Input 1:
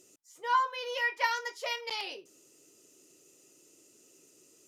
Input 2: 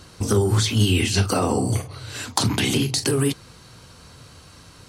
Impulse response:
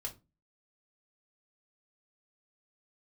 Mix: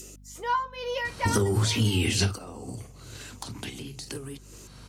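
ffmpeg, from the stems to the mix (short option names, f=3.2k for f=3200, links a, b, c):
-filter_complex "[0:a]adynamicequalizer=threshold=0.00562:dfrequency=650:dqfactor=0.97:tfrequency=650:tqfactor=0.97:attack=5:release=100:ratio=0.375:range=3:mode=boostabove:tftype=bell,tremolo=f=2.2:d=0.68,volume=2dB,asplit=2[a][b];[1:a]adelay=1050,volume=2.5dB[c];[b]apad=whole_len=261952[d];[c][d]sidechaingate=range=-23dB:threshold=-56dB:ratio=16:detection=peak[e];[a][e]amix=inputs=2:normalize=0,acompressor=mode=upward:threshold=-33dB:ratio=2.5,aeval=exprs='val(0)+0.00355*(sin(2*PI*50*n/s)+sin(2*PI*2*50*n/s)/2+sin(2*PI*3*50*n/s)/3+sin(2*PI*4*50*n/s)/4+sin(2*PI*5*50*n/s)/5)':c=same,acompressor=threshold=-21dB:ratio=6"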